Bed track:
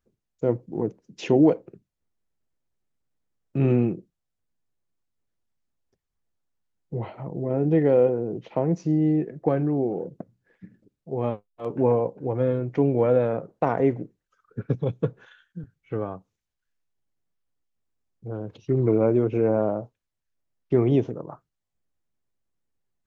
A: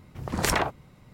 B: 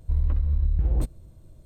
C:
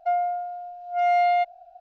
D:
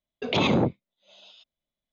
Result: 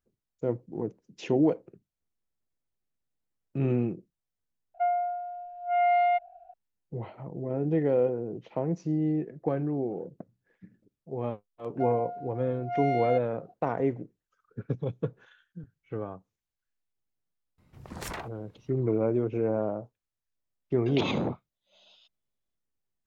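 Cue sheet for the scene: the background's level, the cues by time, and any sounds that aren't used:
bed track −6 dB
0:04.74: mix in C −3 dB + low-pass filter 2,800 Hz 24 dB per octave
0:11.74: mix in C −9 dB
0:17.58: mix in A −12 dB + gain into a clipping stage and back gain 19 dB
0:20.64: mix in D −7.5 dB
not used: B

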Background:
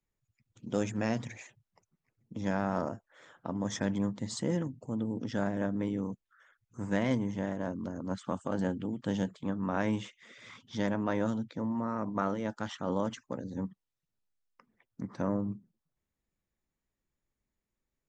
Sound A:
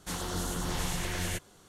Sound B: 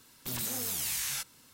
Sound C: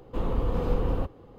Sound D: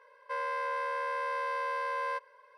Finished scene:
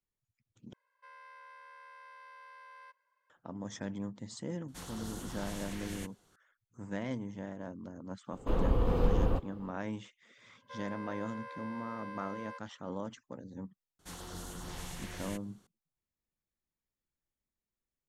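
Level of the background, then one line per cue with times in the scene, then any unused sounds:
background −8 dB
0:00.73: overwrite with D −17 dB + high-pass filter 990 Hz
0:04.68: mix in A −10.5 dB
0:08.33: mix in C −1.5 dB
0:10.40: mix in D −12.5 dB
0:13.99: mix in A −10.5 dB
not used: B

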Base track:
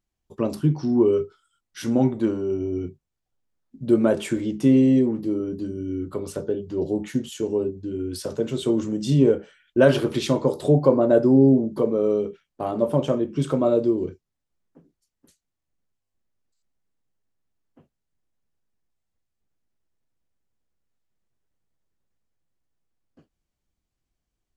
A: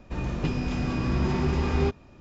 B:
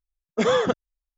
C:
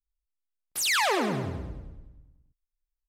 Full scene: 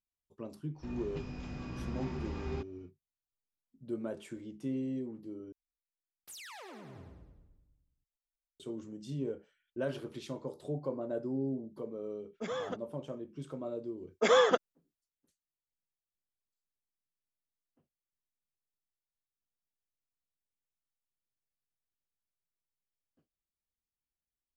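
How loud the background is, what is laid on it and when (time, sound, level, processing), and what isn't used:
base track −19.5 dB
0:00.72: mix in A −14.5 dB, fades 0.10 s
0:05.52: overwrite with C −17.5 dB + downward compressor, threshold −27 dBFS
0:12.03: mix in B −17 dB
0:13.84: mix in B −2.5 dB + high-pass filter 370 Hz

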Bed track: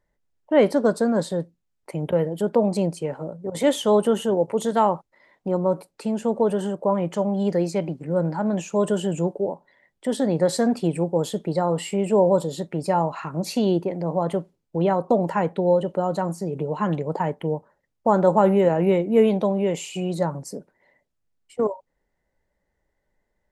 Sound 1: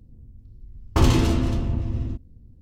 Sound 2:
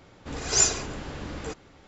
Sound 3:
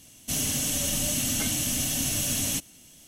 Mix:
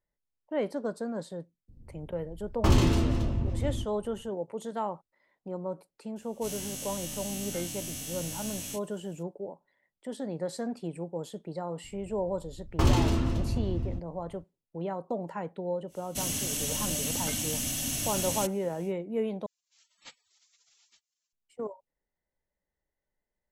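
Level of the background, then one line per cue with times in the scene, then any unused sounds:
bed track −13.5 dB
0:01.68: mix in 1 −4.5 dB
0:06.16: mix in 3 −15 dB + every bin's largest magnitude spread in time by 60 ms
0:11.83: mix in 1 −5.5 dB
0:15.87: mix in 3 −4.5 dB, fades 0.10 s
0:19.46: overwrite with 2 −9 dB + gate on every frequency bin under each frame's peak −30 dB weak

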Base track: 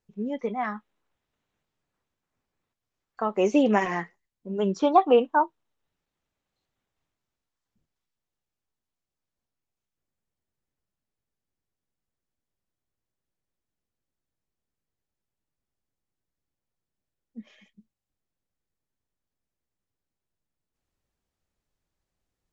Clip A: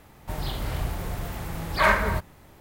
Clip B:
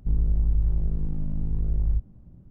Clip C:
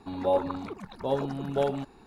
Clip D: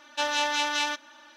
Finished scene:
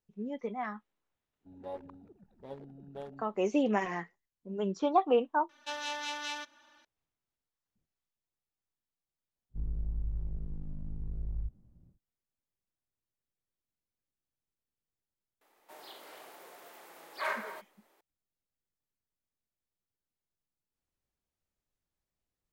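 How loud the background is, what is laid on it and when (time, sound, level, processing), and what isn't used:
base track −7.5 dB
0:01.39: mix in C −16.5 dB, fades 0.10 s + adaptive Wiener filter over 41 samples
0:05.49: mix in D −11 dB
0:09.49: mix in B −12.5 dB, fades 0.10 s
0:15.41: mix in A −14 dB + high-pass filter 360 Hz 24 dB per octave

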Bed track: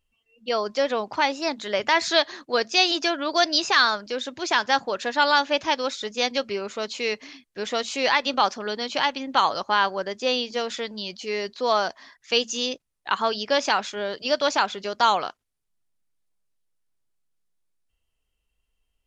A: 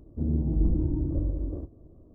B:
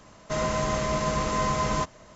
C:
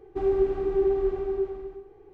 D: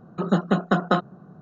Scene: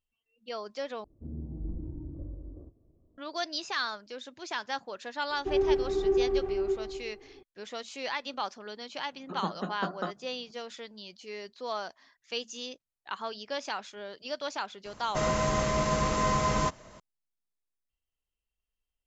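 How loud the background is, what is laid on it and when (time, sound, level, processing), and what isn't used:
bed track −13 dB
0:01.04: overwrite with A −13 dB
0:05.30: mix in C −2.5 dB
0:09.11: mix in D −13 dB + parametric band 120 Hz −12 dB 0.63 octaves
0:14.85: mix in B −1 dB

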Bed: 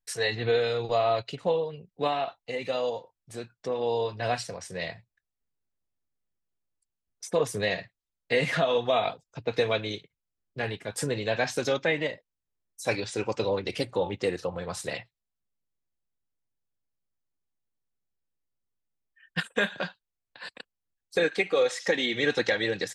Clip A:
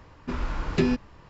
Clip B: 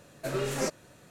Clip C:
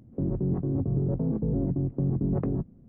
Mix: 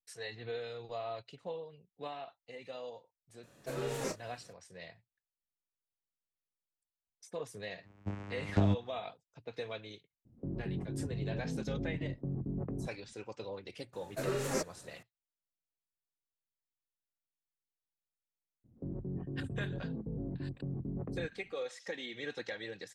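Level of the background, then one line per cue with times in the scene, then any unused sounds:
bed −15.5 dB
0:03.43: mix in B −8 dB + double-tracking delay 30 ms −10 dB
0:07.78: mix in A −4.5 dB, fades 0.10 s + channel vocoder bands 4, saw 100 Hz
0:10.25: mix in C −11 dB
0:13.93: mix in B −3.5 dB + parametric band 3,000 Hz −3.5 dB
0:18.64: mix in C −12.5 dB

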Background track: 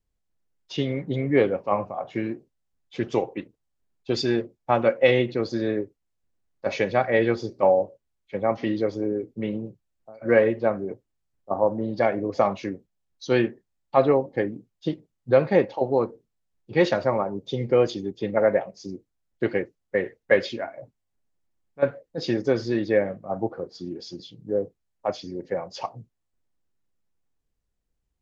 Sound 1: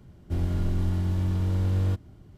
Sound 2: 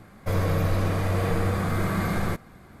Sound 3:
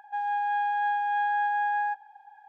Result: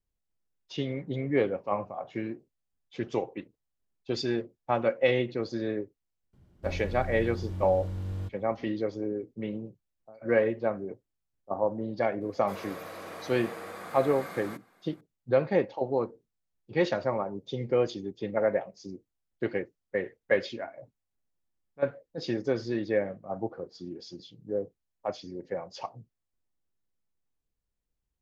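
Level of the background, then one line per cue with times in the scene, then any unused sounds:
background track −6 dB
0:06.33: mix in 1 −10 dB
0:12.21: mix in 2 −10 dB + high-pass filter 410 Hz
not used: 3

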